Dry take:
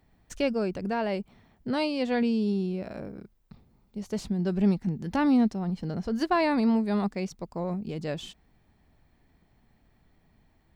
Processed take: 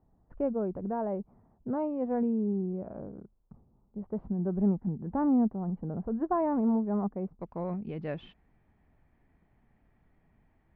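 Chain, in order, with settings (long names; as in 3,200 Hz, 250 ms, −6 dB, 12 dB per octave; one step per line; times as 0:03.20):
low-pass filter 1,100 Hz 24 dB per octave, from 0:07.41 2,500 Hz
level −3 dB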